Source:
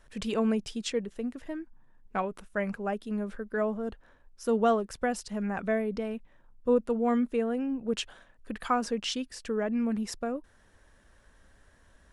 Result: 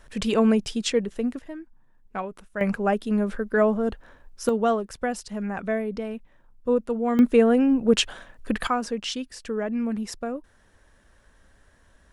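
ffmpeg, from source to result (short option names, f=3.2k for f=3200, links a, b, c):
-af "asetnsamples=n=441:p=0,asendcmd='1.39 volume volume -0.5dB;2.61 volume volume 9dB;4.49 volume volume 2dB;7.19 volume volume 11.5dB;8.67 volume volume 2dB',volume=7.5dB"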